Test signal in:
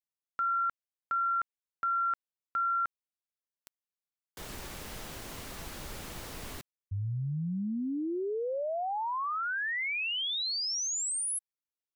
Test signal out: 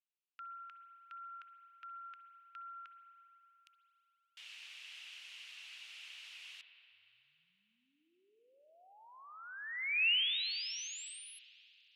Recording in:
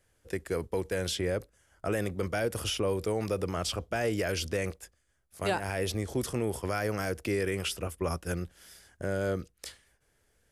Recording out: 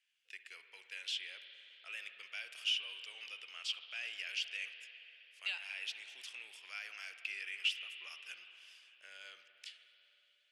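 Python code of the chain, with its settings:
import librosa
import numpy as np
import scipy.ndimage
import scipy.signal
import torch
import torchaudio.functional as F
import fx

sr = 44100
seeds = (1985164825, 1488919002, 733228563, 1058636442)

y = fx.ladder_bandpass(x, sr, hz=3000.0, resonance_pct=65)
y = fx.rev_spring(y, sr, rt60_s=3.4, pass_ms=(50, 57), chirp_ms=25, drr_db=8.0)
y = y * librosa.db_to_amplitude(4.5)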